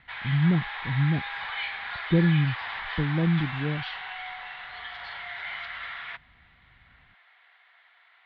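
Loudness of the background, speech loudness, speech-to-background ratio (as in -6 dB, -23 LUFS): -34.5 LUFS, -26.5 LUFS, 8.0 dB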